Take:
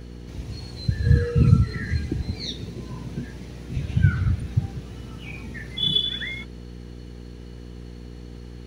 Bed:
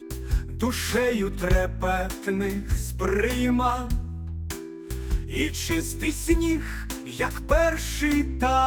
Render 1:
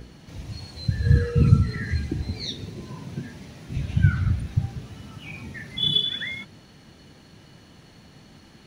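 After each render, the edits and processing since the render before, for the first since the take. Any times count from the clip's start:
hum removal 60 Hz, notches 9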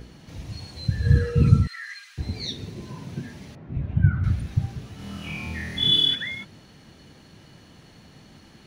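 0:01.67–0:02.18: elliptic high-pass filter 1,200 Hz, stop band 70 dB
0:03.55–0:04.24: low-pass filter 1,300 Hz
0:04.96–0:06.15: flutter between parallel walls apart 4.3 metres, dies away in 1 s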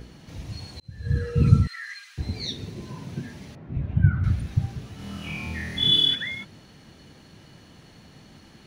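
0:00.80–0:01.53: fade in linear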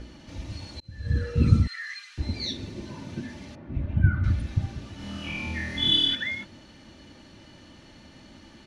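low-pass filter 7,600 Hz 12 dB per octave
comb filter 3.4 ms, depth 51%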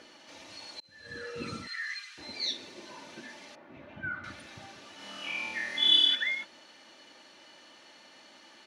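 high-pass filter 570 Hz 12 dB per octave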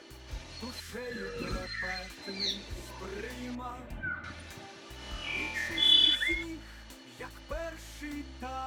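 mix in bed −17.5 dB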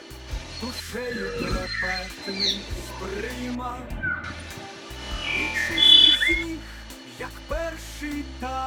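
level +9 dB

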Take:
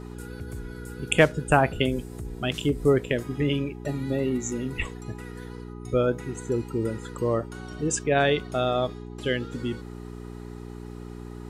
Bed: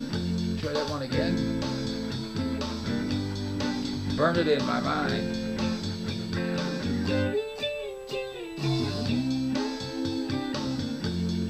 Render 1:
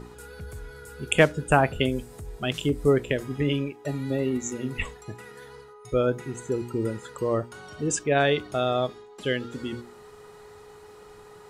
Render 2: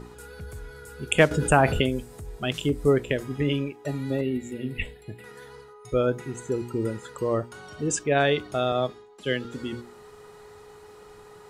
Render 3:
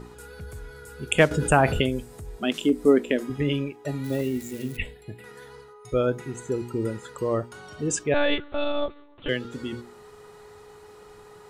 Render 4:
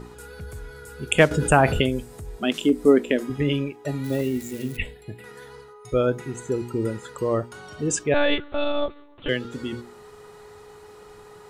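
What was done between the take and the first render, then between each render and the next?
hum removal 60 Hz, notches 6
0:01.31–0:01.81: envelope flattener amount 50%; 0:04.21–0:05.24: phaser with its sweep stopped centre 2,700 Hz, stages 4; 0:08.72–0:09.45: multiband upward and downward expander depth 40%
0:02.40–0:03.30: low shelf with overshoot 170 Hz −11 dB, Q 3; 0:04.04–0:04.77: spike at every zero crossing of −32.5 dBFS; 0:08.14–0:09.29: one-pitch LPC vocoder at 8 kHz 290 Hz
level +2 dB

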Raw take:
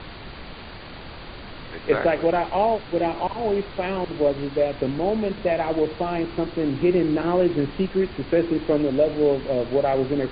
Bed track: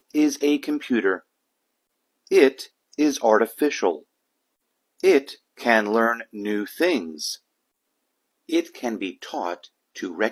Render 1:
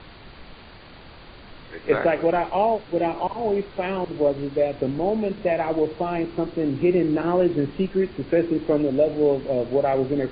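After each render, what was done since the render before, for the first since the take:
noise reduction from a noise print 6 dB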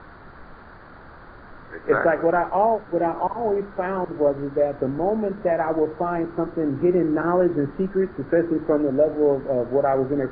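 high shelf with overshoot 2,000 Hz −10 dB, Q 3
mains-hum notches 50/100/150/200 Hz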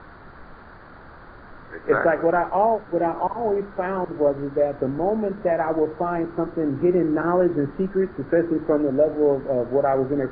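no processing that can be heard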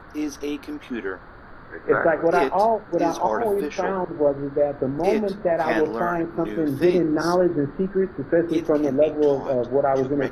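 mix in bed track −8 dB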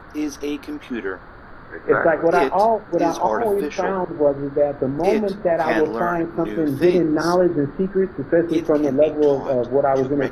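level +2.5 dB

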